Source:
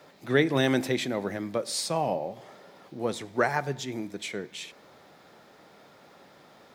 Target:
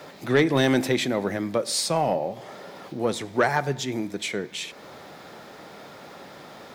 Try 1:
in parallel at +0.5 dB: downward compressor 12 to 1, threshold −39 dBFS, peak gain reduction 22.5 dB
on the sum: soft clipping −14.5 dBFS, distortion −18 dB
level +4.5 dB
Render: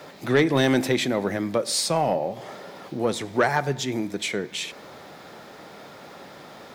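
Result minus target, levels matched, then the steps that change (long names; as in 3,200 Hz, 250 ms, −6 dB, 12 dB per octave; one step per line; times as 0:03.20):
downward compressor: peak gain reduction −8 dB
change: downward compressor 12 to 1, threshold −47.5 dBFS, peak gain reduction 30 dB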